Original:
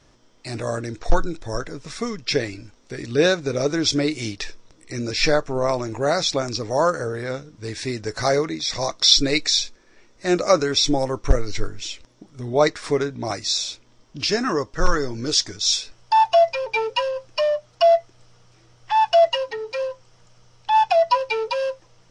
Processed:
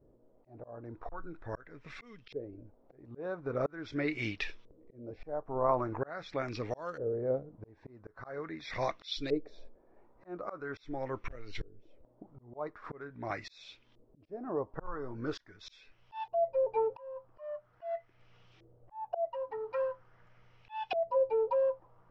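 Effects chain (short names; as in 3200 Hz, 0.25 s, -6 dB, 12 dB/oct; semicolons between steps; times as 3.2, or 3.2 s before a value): auto swell 0.561 s; LFO low-pass saw up 0.43 Hz 440–3300 Hz; gain -8.5 dB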